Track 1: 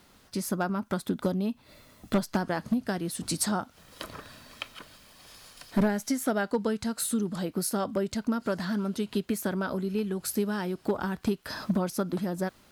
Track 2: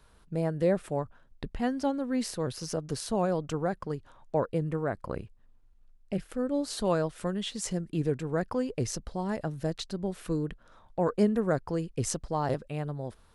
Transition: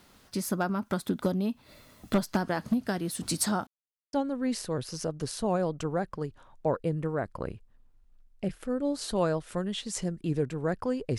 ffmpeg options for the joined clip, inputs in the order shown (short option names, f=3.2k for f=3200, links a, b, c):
-filter_complex "[0:a]apad=whole_dur=11.18,atrim=end=11.18,asplit=2[a][b];[a]atrim=end=3.67,asetpts=PTS-STARTPTS,afade=t=out:st=3.666:d=0.004:c=hsin[c];[b]atrim=start=3.67:end=4.13,asetpts=PTS-STARTPTS,volume=0[d];[1:a]atrim=start=1.82:end=8.87,asetpts=PTS-STARTPTS,afade=t=in:d=0.004:c=hsin[e];[c][d][e]concat=n=3:v=0:a=1"